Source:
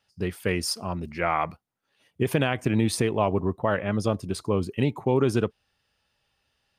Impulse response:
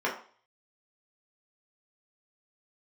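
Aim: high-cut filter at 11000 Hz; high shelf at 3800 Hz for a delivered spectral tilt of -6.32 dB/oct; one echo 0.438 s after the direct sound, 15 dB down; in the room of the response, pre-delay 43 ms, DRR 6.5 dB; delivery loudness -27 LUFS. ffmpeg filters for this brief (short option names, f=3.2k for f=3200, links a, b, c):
-filter_complex "[0:a]lowpass=11k,highshelf=f=3.8k:g=-8.5,aecho=1:1:438:0.178,asplit=2[a][b];[1:a]atrim=start_sample=2205,adelay=43[c];[b][c]afir=irnorm=-1:irlink=0,volume=-17.5dB[d];[a][d]amix=inputs=2:normalize=0,volume=-1dB"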